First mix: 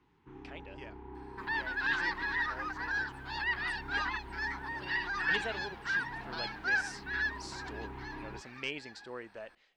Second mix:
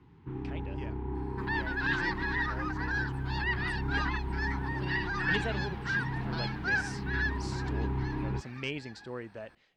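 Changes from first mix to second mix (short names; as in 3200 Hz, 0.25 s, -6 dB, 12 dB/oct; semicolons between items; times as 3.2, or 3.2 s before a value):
first sound +4.5 dB; master: add bell 110 Hz +13.5 dB 2.6 oct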